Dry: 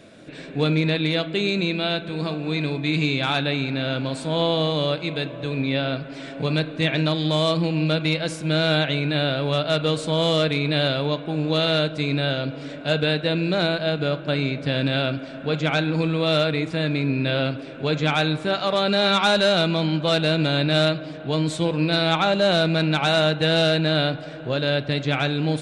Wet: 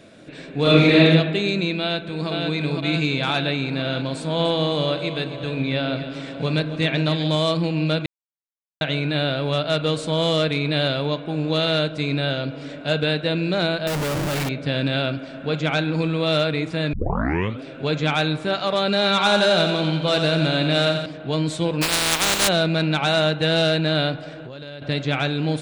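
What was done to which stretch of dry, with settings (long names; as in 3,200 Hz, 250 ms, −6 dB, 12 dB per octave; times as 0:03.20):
0:00.62–0:01.02: thrown reverb, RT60 1.3 s, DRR −9 dB
0:01.80–0:02.29: delay throw 510 ms, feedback 75%, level −3.5 dB
0:04.18–0:07.35: delay that swaps between a low-pass and a high-pass 135 ms, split 910 Hz, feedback 70%, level −9 dB
0:08.06–0:08.81: silence
0:13.87–0:14.49: comparator with hysteresis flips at −35.5 dBFS
0:16.93: tape start 0.69 s
0:19.09–0:21.06: repeating echo 88 ms, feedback 58%, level −7 dB
0:21.81–0:22.47: compressing power law on the bin magnitudes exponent 0.22
0:24.29–0:24.82: downward compressor 16 to 1, threshold −32 dBFS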